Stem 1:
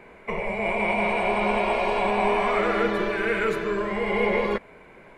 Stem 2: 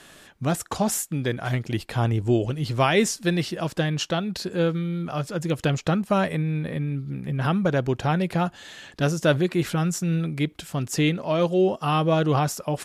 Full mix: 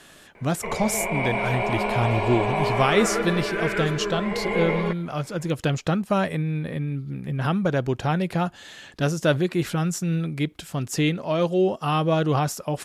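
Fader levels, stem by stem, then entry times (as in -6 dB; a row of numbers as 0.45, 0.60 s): -2.0, -0.5 dB; 0.35, 0.00 s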